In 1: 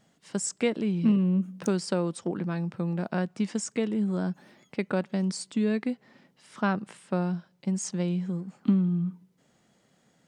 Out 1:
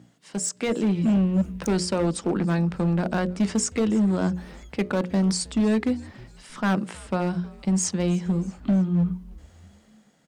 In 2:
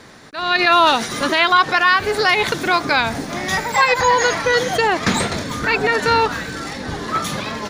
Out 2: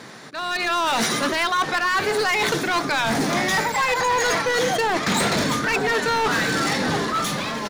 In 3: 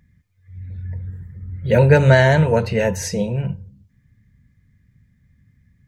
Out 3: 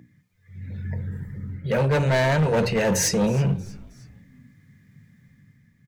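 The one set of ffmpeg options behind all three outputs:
ffmpeg -i in.wav -filter_complex "[0:a]aeval=exprs='val(0)+0.00794*(sin(2*PI*60*n/s)+sin(2*PI*2*60*n/s)/2+sin(2*PI*3*60*n/s)/3+sin(2*PI*4*60*n/s)/4+sin(2*PI*5*60*n/s)/5)':channel_layout=same,highpass=frequency=120:width=0.5412,highpass=frequency=120:width=1.3066,areverse,acompressor=threshold=-24dB:ratio=6,areverse,bandreject=frequency=60:width_type=h:width=6,bandreject=frequency=120:width_type=h:width=6,bandreject=frequency=180:width_type=h:width=6,bandreject=frequency=240:width_type=h:width=6,bandreject=frequency=300:width_type=h:width=6,bandreject=frequency=360:width_type=h:width=6,bandreject=frequency=420:width_type=h:width=6,bandreject=frequency=480:width_type=h:width=6,bandreject=frequency=540:width_type=h:width=6,bandreject=frequency=600:width_type=h:width=6,asoftclip=type=hard:threshold=-25.5dB,dynaudnorm=framelen=110:gausssize=11:maxgain=6dB,asplit=2[link_01][link_02];[link_02]asplit=3[link_03][link_04][link_05];[link_03]adelay=316,afreqshift=-130,volume=-22dB[link_06];[link_04]adelay=632,afreqshift=-260,volume=-28.4dB[link_07];[link_05]adelay=948,afreqshift=-390,volume=-34.8dB[link_08];[link_06][link_07][link_08]amix=inputs=3:normalize=0[link_09];[link_01][link_09]amix=inputs=2:normalize=0,volume=2.5dB" out.wav

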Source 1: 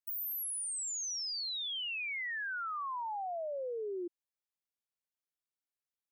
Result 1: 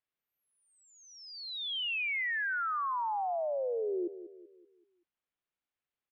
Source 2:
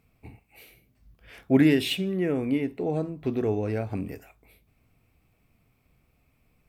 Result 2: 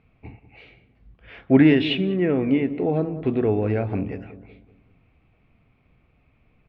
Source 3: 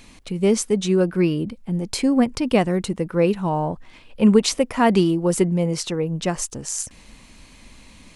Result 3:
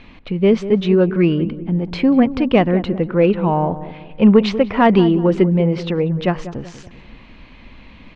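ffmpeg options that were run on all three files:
ffmpeg -i in.wav -filter_complex "[0:a]lowpass=frequency=3300:width=0.5412,lowpass=frequency=3300:width=1.3066,acontrast=27,asplit=2[link_01][link_02];[link_02]adelay=191,lowpass=frequency=1000:poles=1,volume=-12.5dB,asplit=2[link_03][link_04];[link_04]adelay=191,lowpass=frequency=1000:poles=1,volume=0.46,asplit=2[link_05][link_06];[link_06]adelay=191,lowpass=frequency=1000:poles=1,volume=0.46,asplit=2[link_07][link_08];[link_08]adelay=191,lowpass=frequency=1000:poles=1,volume=0.46,asplit=2[link_09][link_10];[link_10]adelay=191,lowpass=frequency=1000:poles=1,volume=0.46[link_11];[link_01][link_03][link_05][link_07][link_09][link_11]amix=inputs=6:normalize=0" out.wav

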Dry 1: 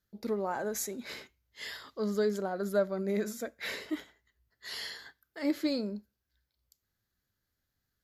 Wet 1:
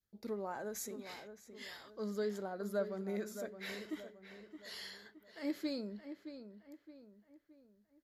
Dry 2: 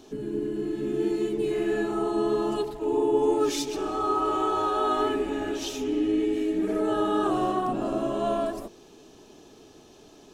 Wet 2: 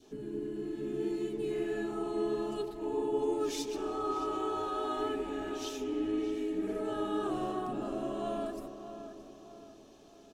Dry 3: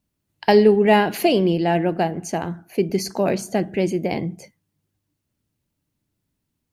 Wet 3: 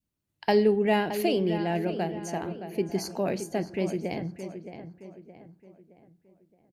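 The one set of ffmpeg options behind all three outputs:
ffmpeg -i in.wav -filter_complex "[0:a]adynamicequalizer=threshold=0.0178:dfrequency=1000:dqfactor=1.2:tfrequency=1000:tqfactor=1.2:attack=5:release=100:ratio=0.375:range=2:mode=cutabove:tftype=bell,asplit=2[link_01][link_02];[link_02]adelay=619,lowpass=frequency=2700:poles=1,volume=-10dB,asplit=2[link_03][link_04];[link_04]adelay=619,lowpass=frequency=2700:poles=1,volume=0.43,asplit=2[link_05][link_06];[link_06]adelay=619,lowpass=frequency=2700:poles=1,volume=0.43,asplit=2[link_07][link_08];[link_08]adelay=619,lowpass=frequency=2700:poles=1,volume=0.43,asplit=2[link_09][link_10];[link_10]adelay=619,lowpass=frequency=2700:poles=1,volume=0.43[link_11];[link_03][link_05][link_07][link_09][link_11]amix=inputs=5:normalize=0[link_12];[link_01][link_12]amix=inputs=2:normalize=0,volume=-8dB" out.wav

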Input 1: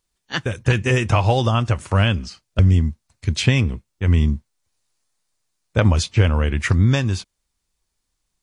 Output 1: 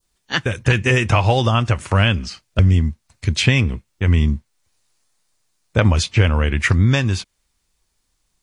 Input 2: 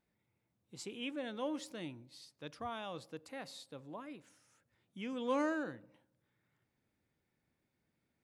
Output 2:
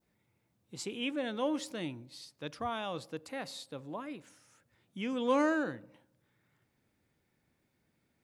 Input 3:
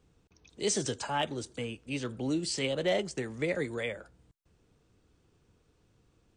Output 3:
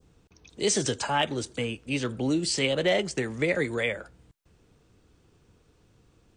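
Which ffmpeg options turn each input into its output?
ffmpeg -i in.wav -filter_complex "[0:a]adynamicequalizer=threshold=0.0126:dfrequency=2200:dqfactor=1:tfrequency=2200:tqfactor=1:attack=5:release=100:ratio=0.375:range=2:mode=boostabove:tftype=bell,asplit=2[link_01][link_02];[link_02]acompressor=threshold=-28dB:ratio=6,volume=2dB[link_03];[link_01][link_03]amix=inputs=2:normalize=0,volume=-1dB" out.wav

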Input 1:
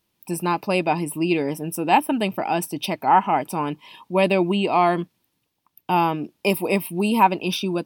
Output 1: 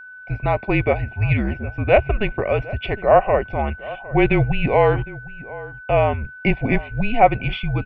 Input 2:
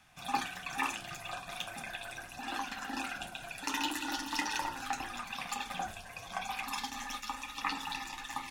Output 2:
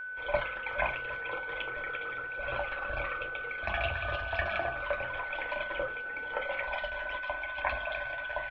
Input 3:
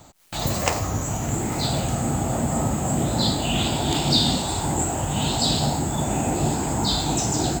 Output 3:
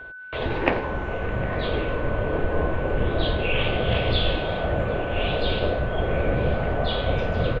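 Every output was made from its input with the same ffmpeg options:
ffmpeg -i in.wav -filter_complex "[0:a]highpass=frequency=180:width_type=q:width=0.5412,highpass=frequency=180:width_type=q:width=1.307,lowpass=frequency=3200:width_type=q:width=0.5176,lowpass=frequency=3200:width_type=q:width=0.7071,lowpass=frequency=3200:width_type=q:width=1.932,afreqshift=-220,aeval=exprs='val(0)+0.01*sin(2*PI*1500*n/s)':channel_layout=same,asplit=2[link_01][link_02];[link_02]adelay=758,volume=-18dB,highshelf=frequency=4000:gain=-17.1[link_03];[link_01][link_03]amix=inputs=2:normalize=0,volume=3dB" out.wav

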